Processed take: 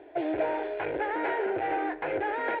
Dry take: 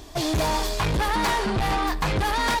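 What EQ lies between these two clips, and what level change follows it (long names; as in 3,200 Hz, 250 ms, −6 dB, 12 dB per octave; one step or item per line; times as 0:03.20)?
high-frequency loss of the air 480 metres
loudspeaker in its box 320–2,600 Hz, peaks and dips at 350 Hz +5 dB, 510 Hz +3 dB, 740 Hz +3 dB, 1,100 Hz +8 dB, 1,500 Hz +8 dB, 2,200 Hz +3 dB
phaser with its sweep stopped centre 470 Hz, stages 4
0.0 dB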